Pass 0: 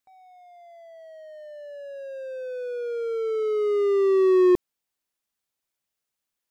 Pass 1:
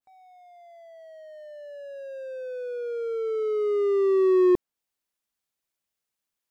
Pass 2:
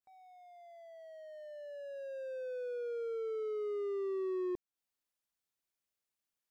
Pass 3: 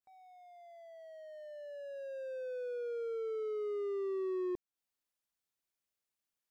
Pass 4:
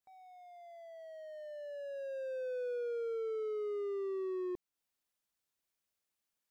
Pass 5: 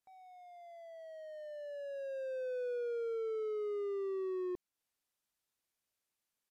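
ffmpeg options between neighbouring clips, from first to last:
-af "adynamicequalizer=threshold=0.00631:dfrequency=1700:dqfactor=0.7:tfrequency=1700:tqfactor=0.7:attack=5:release=100:ratio=0.375:range=2:mode=cutabove:tftype=highshelf,volume=0.841"
-af "acompressor=threshold=0.0282:ratio=4,volume=0.531"
-af anull
-af "alimiter=level_in=3.55:limit=0.0631:level=0:latency=1,volume=0.282,volume=1.26"
-af "aresample=32000,aresample=44100"

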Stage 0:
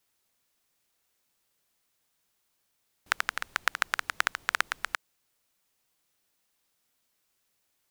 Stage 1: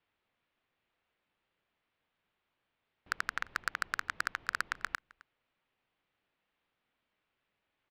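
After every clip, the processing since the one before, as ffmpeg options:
-filter_complex "[0:a]lowpass=f=3100:w=0.5412,lowpass=f=3100:w=1.3066,volume=7.94,asoftclip=hard,volume=0.126,asplit=2[s0][s1];[s1]adelay=262.4,volume=0.0708,highshelf=f=4000:g=-5.9[s2];[s0][s2]amix=inputs=2:normalize=0"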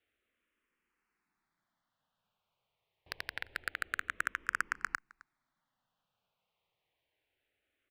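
-filter_complex "[0:a]asplit=2[s0][s1];[s1]afreqshift=-0.26[s2];[s0][s2]amix=inputs=2:normalize=1,volume=1.19"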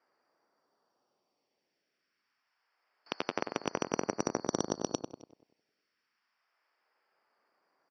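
-filter_complex "[0:a]afftfilt=real='real(if(lt(b,272),68*(eq(floor(b/68),0)*1+eq(floor(b/68),1)*2+eq(floor(b/68),2)*3+eq(floor(b/68),3)*0)+mod(b,68),b),0)':imag='imag(if(lt(b,272),68*(eq(floor(b/68),0)*1+eq(floor(b/68),1)*2+eq(floor(b/68),2)*3+eq(floor(b/68),3)*0)+mod(b,68),b),0)':win_size=2048:overlap=0.75,highpass=310,lowpass=3100,asplit=2[s0][s1];[s1]adelay=96,lowpass=f=1800:p=1,volume=0.501,asplit=2[s2][s3];[s3]adelay=96,lowpass=f=1800:p=1,volume=0.47,asplit=2[s4][s5];[s5]adelay=96,lowpass=f=1800:p=1,volume=0.47,asplit=2[s6][s7];[s7]adelay=96,lowpass=f=1800:p=1,volume=0.47,asplit=2[s8][s9];[s9]adelay=96,lowpass=f=1800:p=1,volume=0.47,asplit=2[s10][s11];[s11]adelay=96,lowpass=f=1800:p=1,volume=0.47[s12];[s0][s2][s4][s6][s8][s10][s12]amix=inputs=7:normalize=0,volume=2.82"

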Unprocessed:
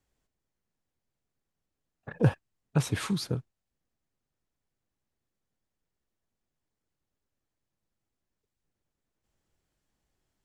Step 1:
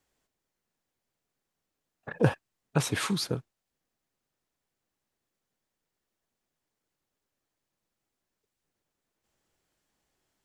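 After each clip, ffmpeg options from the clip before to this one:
-af "lowshelf=f=170:g=-11.5,volume=1.68"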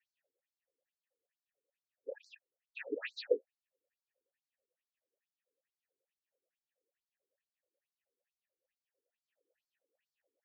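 -filter_complex "[0:a]asplit=3[s0][s1][s2];[s0]bandpass=f=530:t=q:w=8,volume=1[s3];[s1]bandpass=f=1840:t=q:w=8,volume=0.501[s4];[s2]bandpass=f=2480:t=q:w=8,volume=0.355[s5];[s3][s4][s5]amix=inputs=3:normalize=0,afftfilt=real='re*between(b*sr/1024,330*pow(6000/330,0.5+0.5*sin(2*PI*2.3*pts/sr))/1.41,330*pow(6000/330,0.5+0.5*sin(2*PI*2.3*pts/sr))*1.41)':imag='im*between(b*sr/1024,330*pow(6000/330,0.5+0.5*sin(2*PI*2.3*pts/sr))/1.41,330*pow(6000/330,0.5+0.5*sin(2*PI*2.3*pts/sr))*1.41)':win_size=1024:overlap=0.75,volume=3.76"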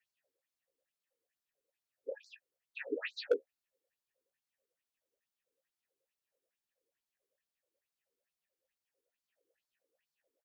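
-filter_complex "[0:a]asoftclip=type=hard:threshold=0.0841,asplit=2[s0][s1];[s1]adelay=15,volume=0.299[s2];[s0][s2]amix=inputs=2:normalize=0,volume=1.19"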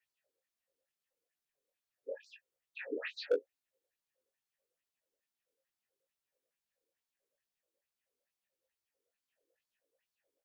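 -af "flanger=delay=17:depth=7.4:speed=0.8,volume=1.26"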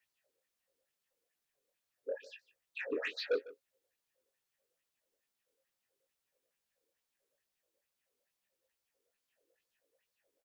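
-af "asoftclip=type=tanh:threshold=0.0299,aecho=1:1:151:0.112,volume=1.58"

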